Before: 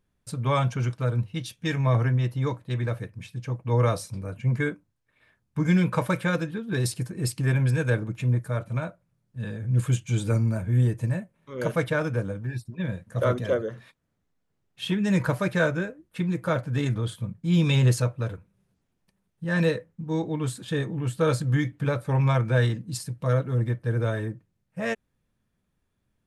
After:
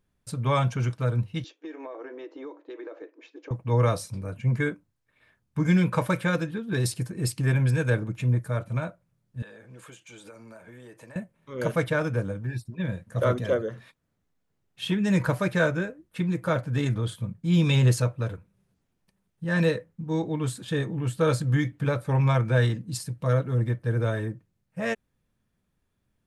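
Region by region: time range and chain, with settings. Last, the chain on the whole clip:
1.44–3.51 brick-wall FIR band-pass 280–7400 Hz + tilt -4.5 dB/oct + compressor, threshold -36 dBFS
9.42–11.16 HPF 490 Hz + compressor 10:1, threshold -42 dBFS + high shelf 4000 Hz -5.5 dB
whole clip: dry

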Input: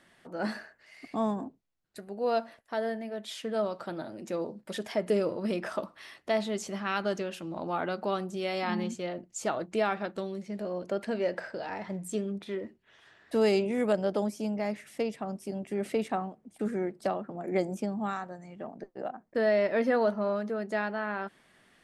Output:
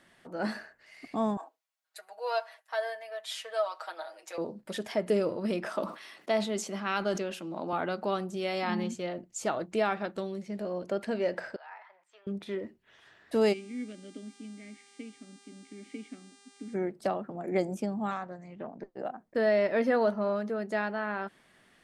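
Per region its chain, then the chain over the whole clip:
1.37–4.38 HPF 670 Hz 24 dB/oct + comb 6.3 ms, depth 88%
5.65–7.73 HPF 170 Hz 24 dB/oct + notch 1800 Hz, Q 23 + sustainer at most 110 dB/s
11.56–12.27 HPF 960 Hz 24 dB/oct + upward compressor, threshold -49 dBFS + tape spacing loss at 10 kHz 42 dB
13.52–16.73 vowel filter i + buzz 400 Hz, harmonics 24, -60 dBFS -1 dB/oct
18.11–18.96 air absorption 74 m + Doppler distortion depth 0.14 ms
whole clip: dry

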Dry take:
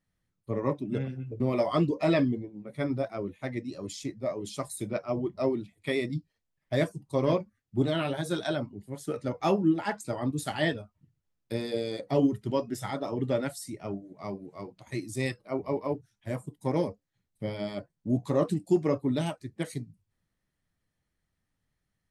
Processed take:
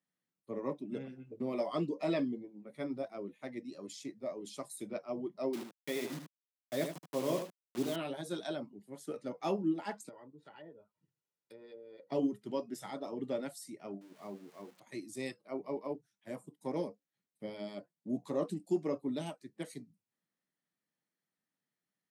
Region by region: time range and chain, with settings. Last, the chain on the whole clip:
5.53–7.96 requantised 6-bit, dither none + echo 76 ms -7.5 dB
10.09–12.12 treble ducked by the level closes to 670 Hz, closed at -24.5 dBFS + comb 2.1 ms, depth 54% + compressor 2:1, threshold -53 dBFS
14.01–14.8 switching spikes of -31.5 dBFS + LPF 1400 Hz 6 dB/oct
whole clip: HPF 180 Hz 24 dB/oct; dynamic EQ 1600 Hz, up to -4 dB, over -45 dBFS, Q 1.2; gain -7.5 dB

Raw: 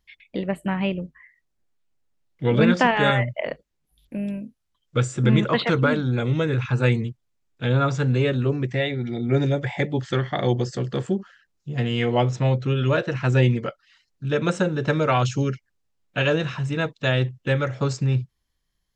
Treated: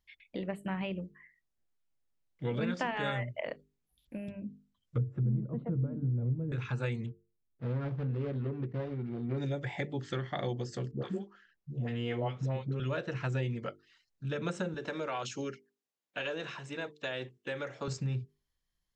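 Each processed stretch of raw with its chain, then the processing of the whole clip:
4.28–6.52 treble ducked by the level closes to 340 Hz, closed at -18.5 dBFS + bell 96 Hz +11.5 dB 1.8 oct
7.06–9.38 median filter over 41 samples + air absorption 280 m
10.91–12.8 LPF 3000 Hz 6 dB/oct + dispersion highs, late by 0.101 s, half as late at 540 Hz
14.74–17.88 HPF 300 Hz + compressor 4:1, threshold -23 dBFS + notch 1300 Hz, Q 22
whole clip: compressor 3:1, threshold -23 dBFS; notches 50/100/150/200/250/300/350/400/450 Hz; gain -8 dB

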